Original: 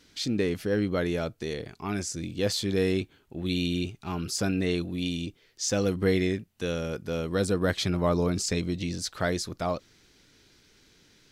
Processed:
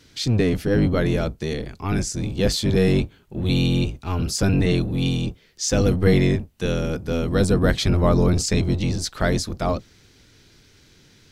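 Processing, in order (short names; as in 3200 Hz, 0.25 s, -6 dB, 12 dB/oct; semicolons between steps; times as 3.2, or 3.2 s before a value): octaver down 1 oct, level +3 dB; gain +5 dB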